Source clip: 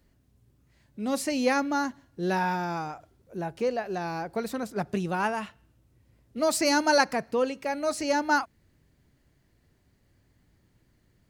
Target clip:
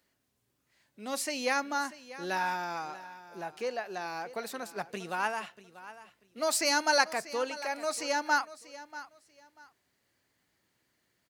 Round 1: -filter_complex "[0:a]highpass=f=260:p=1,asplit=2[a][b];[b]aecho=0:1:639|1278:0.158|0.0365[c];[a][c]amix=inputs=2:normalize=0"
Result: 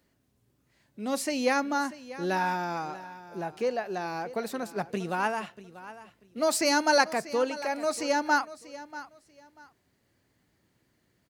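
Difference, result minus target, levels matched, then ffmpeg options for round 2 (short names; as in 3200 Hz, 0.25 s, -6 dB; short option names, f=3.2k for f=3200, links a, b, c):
250 Hz band +5.5 dB
-filter_complex "[0:a]highpass=f=1k:p=1,asplit=2[a][b];[b]aecho=0:1:639|1278:0.158|0.0365[c];[a][c]amix=inputs=2:normalize=0"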